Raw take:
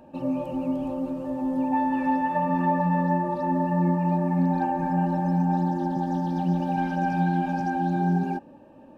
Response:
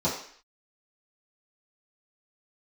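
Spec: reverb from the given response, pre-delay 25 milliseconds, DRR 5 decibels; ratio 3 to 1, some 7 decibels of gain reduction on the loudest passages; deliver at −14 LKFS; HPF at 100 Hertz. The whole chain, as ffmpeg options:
-filter_complex "[0:a]highpass=100,acompressor=threshold=-29dB:ratio=3,asplit=2[link_01][link_02];[1:a]atrim=start_sample=2205,adelay=25[link_03];[link_02][link_03]afir=irnorm=-1:irlink=0,volume=-16dB[link_04];[link_01][link_04]amix=inputs=2:normalize=0,volume=14dB"

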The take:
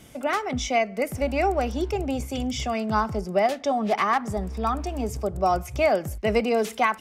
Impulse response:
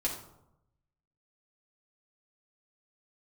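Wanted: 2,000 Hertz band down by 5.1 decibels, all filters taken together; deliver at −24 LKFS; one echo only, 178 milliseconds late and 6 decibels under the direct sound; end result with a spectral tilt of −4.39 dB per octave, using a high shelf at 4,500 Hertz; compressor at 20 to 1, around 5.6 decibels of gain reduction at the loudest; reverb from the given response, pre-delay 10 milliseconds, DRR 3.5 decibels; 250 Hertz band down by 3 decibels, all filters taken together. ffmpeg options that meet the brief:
-filter_complex "[0:a]equalizer=frequency=250:width_type=o:gain=-3.5,equalizer=frequency=2000:width_type=o:gain=-7.5,highshelf=frequency=4500:gain=7,acompressor=threshold=-23dB:ratio=20,aecho=1:1:178:0.501,asplit=2[link_01][link_02];[1:a]atrim=start_sample=2205,adelay=10[link_03];[link_02][link_03]afir=irnorm=-1:irlink=0,volume=-8.5dB[link_04];[link_01][link_04]amix=inputs=2:normalize=0,volume=3dB"

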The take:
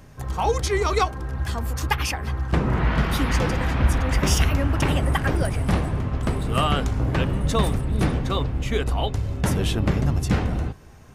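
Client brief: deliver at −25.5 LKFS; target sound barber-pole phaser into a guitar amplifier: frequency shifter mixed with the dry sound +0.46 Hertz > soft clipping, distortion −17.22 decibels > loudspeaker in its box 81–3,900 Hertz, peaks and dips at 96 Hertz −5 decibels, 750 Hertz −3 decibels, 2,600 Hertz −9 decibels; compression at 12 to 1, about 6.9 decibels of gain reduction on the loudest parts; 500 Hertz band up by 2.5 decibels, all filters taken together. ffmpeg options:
ffmpeg -i in.wav -filter_complex "[0:a]equalizer=frequency=500:width_type=o:gain=3.5,acompressor=threshold=-20dB:ratio=12,asplit=2[link_01][link_02];[link_02]afreqshift=0.46[link_03];[link_01][link_03]amix=inputs=2:normalize=1,asoftclip=threshold=-21.5dB,highpass=81,equalizer=frequency=96:width_type=q:width=4:gain=-5,equalizer=frequency=750:width_type=q:width=4:gain=-3,equalizer=frequency=2600:width_type=q:width=4:gain=-9,lowpass=frequency=3900:width=0.5412,lowpass=frequency=3900:width=1.3066,volume=8dB" out.wav

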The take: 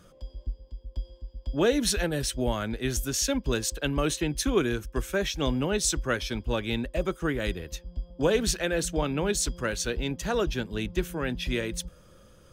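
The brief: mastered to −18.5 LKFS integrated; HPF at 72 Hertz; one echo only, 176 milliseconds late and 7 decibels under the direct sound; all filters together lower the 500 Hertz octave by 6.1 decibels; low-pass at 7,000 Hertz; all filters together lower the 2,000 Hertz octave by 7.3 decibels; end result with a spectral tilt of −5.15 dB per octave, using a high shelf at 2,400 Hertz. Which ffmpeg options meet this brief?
ffmpeg -i in.wav -af "highpass=72,lowpass=7000,equalizer=frequency=500:width_type=o:gain=-7,equalizer=frequency=2000:width_type=o:gain=-6,highshelf=frequency=2400:gain=-7,aecho=1:1:176:0.447,volume=14dB" out.wav

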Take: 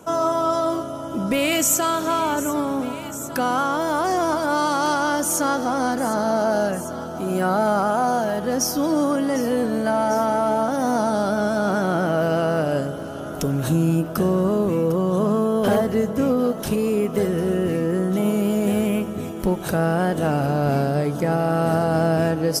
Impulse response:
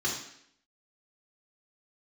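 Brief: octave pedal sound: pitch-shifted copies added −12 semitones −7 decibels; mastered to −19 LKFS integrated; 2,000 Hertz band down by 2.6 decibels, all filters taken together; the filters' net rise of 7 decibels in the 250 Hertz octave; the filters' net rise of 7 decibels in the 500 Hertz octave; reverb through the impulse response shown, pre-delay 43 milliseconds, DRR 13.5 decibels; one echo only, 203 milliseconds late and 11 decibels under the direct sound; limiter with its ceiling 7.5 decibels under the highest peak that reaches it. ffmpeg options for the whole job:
-filter_complex "[0:a]equalizer=frequency=250:width_type=o:gain=7,equalizer=frequency=500:width_type=o:gain=7.5,equalizer=frequency=2000:width_type=o:gain=-5,alimiter=limit=-9dB:level=0:latency=1,aecho=1:1:203:0.282,asplit=2[link_01][link_02];[1:a]atrim=start_sample=2205,adelay=43[link_03];[link_02][link_03]afir=irnorm=-1:irlink=0,volume=-21dB[link_04];[link_01][link_04]amix=inputs=2:normalize=0,asplit=2[link_05][link_06];[link_06]asetrate=22050,aresample=44100,atempo=2,volume=-7dB[link_07];[link_05][link_07]amix=inputs=2:normalize=0,volume=-2.5dB"

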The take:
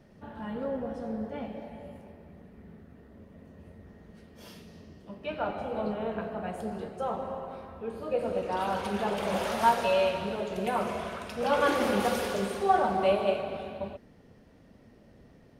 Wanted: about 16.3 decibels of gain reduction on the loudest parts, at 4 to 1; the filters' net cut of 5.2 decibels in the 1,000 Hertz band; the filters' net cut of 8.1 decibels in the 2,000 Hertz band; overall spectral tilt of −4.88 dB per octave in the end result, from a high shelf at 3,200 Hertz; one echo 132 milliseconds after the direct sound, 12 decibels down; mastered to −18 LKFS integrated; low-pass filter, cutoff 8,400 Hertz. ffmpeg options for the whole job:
ffmpeg -i in.wav -af "lowpass=8400,equalizer=frequency=1000:width_type=o:gain=-5,equalizer=frequency=2000:width_type=o:gain=-6.5,highshelf=frequency=3200:gain=-9,acompressor=threshold=-43dB:ratio=4,aecho=1:1:132:0.251,volume=27.5dB" out.wav

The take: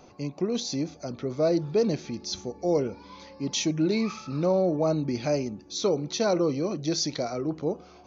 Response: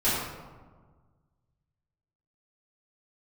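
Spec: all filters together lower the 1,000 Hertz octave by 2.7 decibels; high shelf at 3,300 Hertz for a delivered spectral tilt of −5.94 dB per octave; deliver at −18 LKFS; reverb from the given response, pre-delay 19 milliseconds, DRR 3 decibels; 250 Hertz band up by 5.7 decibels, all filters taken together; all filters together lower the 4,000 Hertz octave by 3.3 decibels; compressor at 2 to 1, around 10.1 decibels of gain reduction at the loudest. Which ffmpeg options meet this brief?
-filter_complex "[0:a]equalizer=frequency=250:width_type=o:gain=8,equalizer=frequency=1000:width_type=o:gain=-5,highshelf=frequency=3300:gain=5,equalizer=frequency=4000:width_type=o:gain=-8,acompressor=threshold=-36dB:ratio=2,asplit=2[link_01][link_02];[1:a]atrim=start_sample=2205,adelay=19[link_03];[link_02][link_03]afir=irnorm=-1:irlink=0,volume=-16.5dB[link_04];[link_01][link_04]amix=inputs=2:normalize=0,volume=12.5dB"

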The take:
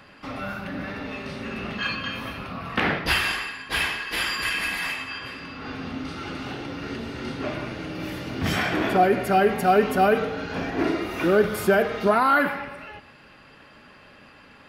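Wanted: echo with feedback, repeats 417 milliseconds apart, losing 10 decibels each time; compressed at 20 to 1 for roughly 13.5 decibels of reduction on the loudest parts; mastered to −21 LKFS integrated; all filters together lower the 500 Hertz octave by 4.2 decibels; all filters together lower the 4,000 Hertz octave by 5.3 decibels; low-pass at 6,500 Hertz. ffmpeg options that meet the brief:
ffmpeg -i in.wav -af "lowpass=6500,equalizer=frequency=500:width_type=o:gain=-5.5,equalizer=frequency=4000:width_type=o:gain=-7,acompressor=threshold=-30dB:ratio=20,aecho=1:1:417|834|1251|1668:0.316|0.101|0.0324|0.0104,volume=13.5dB" out.wav

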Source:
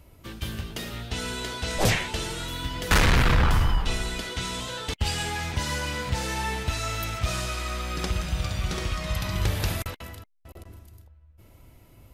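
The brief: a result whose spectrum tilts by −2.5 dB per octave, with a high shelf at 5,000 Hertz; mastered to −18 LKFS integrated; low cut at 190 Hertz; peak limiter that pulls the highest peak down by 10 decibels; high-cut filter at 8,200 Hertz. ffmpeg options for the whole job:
ffmpeg -i in.wav -af "highpass=190,lowpass=8200,highshelf=frequency=5000:gain=3.5,volume=13dB,alimiter=limit=-6.5dB:level=0:latency=1" out.wav

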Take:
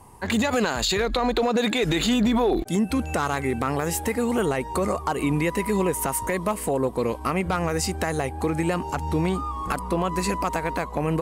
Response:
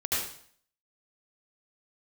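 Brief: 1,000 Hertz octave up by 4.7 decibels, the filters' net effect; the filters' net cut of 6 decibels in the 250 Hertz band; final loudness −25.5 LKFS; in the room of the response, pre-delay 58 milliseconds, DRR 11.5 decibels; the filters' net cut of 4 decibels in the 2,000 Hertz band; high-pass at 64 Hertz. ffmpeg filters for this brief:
-filter_complex "[0:a]highpass=64,equalizer=frequency=250:width_type=o:gain=-8.5,equalizer=frequency=1000:width_type=o:gain=8,equalizer=frequency=2000:width_type=o:gain=-8,asplit=2[link_01][link_02];[1:a]atrim=start_sample=2205,adelay=58[link_03];[link_02][link_03]afir=irnorm=-1:irlink=0,volume=-20dB[link_04];[link_01][link_04]amix=inputs=2:normalize=0,volume=-1dB"

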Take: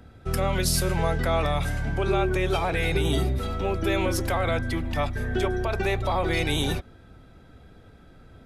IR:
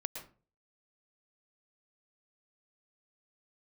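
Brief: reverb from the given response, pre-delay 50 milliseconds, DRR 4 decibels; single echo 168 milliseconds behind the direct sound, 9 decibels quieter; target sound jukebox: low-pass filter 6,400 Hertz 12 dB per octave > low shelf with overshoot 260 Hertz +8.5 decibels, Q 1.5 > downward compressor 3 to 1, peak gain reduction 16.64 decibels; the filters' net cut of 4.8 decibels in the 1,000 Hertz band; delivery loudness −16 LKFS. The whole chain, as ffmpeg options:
-filter_complex "[0:a]equalizer=frequency=1000:width_type=o:gain=-6,aecho=1:1:168:0.355,asplit=2[link_01][link_02];[1:a]atrim=start_sample=2205,adelay=50[link_03];[link_02][link_03]afir=irnorm=-1:irlink=0,volume=-4dB[link_04];[link_01][link_04]amix=inputs=2:normalize=0,lowpass=6400,lowshelf=frequency=260:width_type=q:width=1.5:gain=8.5,acompressor=threshold=-31dB:ratio=3,volume=15.5dB"

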